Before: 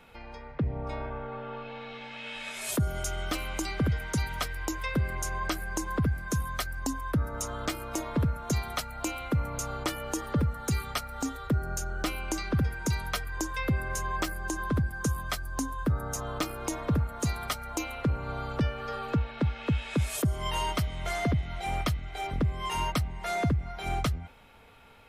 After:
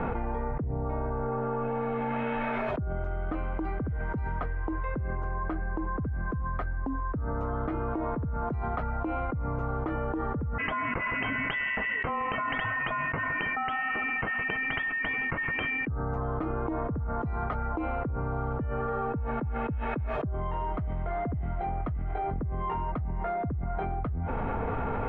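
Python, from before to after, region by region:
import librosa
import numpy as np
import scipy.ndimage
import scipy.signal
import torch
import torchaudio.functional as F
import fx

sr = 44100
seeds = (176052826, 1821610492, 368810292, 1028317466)

y = fx.chain(x, sr, fx.highpass(hz=540.0, slope=12),
    fx.freq_invert(carrier_hz=3400),
    fx.echo_feedback(ms=162, feedback_pct=57, wet_db=-23.5), at=(10.58, 15.87))
y = scipy.signal.sosfilt(scipy.signal.bessel(4, 1000.0, 'lowpass', norm='mag', fs=sr, output='sos'), y)
y = fx.notch(y, sr, hz=570.0, q=12.0)
y = fx.env_flatten(y, sr, amount_pct=100)
y = y * librosa.db_to_amplitude(-7.5)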